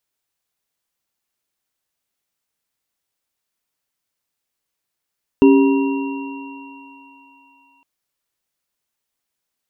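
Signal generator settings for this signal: sine partials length 2.41 s, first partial 275 Hz, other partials 395/957/2750 Hz, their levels -3/-15.5/-20 dB, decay 2.51 s, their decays 1.83/4.23/4.66 s, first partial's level -7 dB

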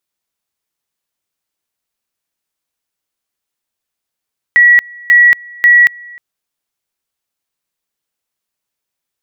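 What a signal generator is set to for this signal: two-level tone 1930 Hz -3 dBFS, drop 26.5 dB, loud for 0.23 s, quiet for 0.31 s, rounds 3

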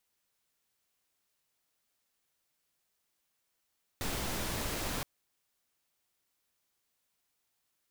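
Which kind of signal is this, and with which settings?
noise pink, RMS -35.5 dBFS 1.02 s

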